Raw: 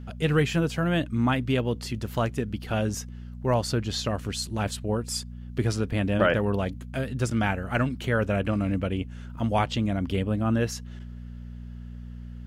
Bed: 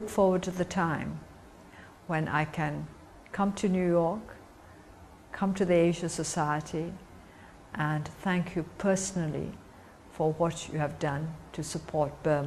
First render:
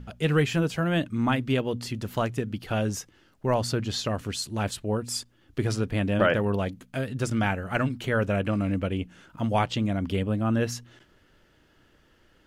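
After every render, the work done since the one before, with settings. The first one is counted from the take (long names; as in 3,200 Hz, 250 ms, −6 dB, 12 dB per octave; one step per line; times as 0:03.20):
hum removal 60 Hz, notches 4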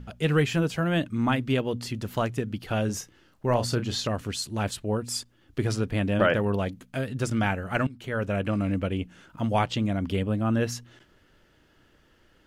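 0:02.86–0:04.07: double-tracking delay 33 ms −10 dB
0:07.87–0:08.71: fade in equal-power, from −14 dB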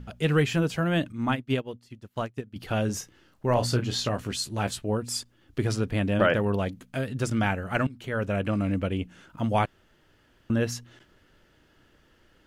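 0:01.12–0:02.56: expander for the loud parts 2.5 to 1, over −42 dBFS
0:03.55–0:04.90: double-tracking delay 16 ms −7 dB
0:09.66–0:10.50: fill with room tone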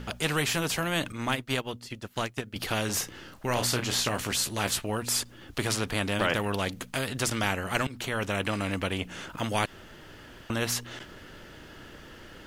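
every bin compressed towards the loudest bin 2 to 1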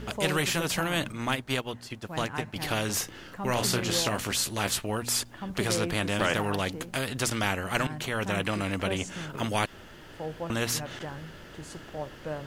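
mix in bed −8.5 dB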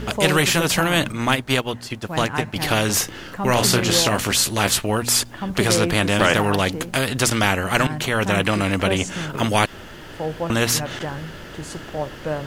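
level +9.5 dB
brickwall limiter −2 dBFS, peak gain reduction 1.5 dB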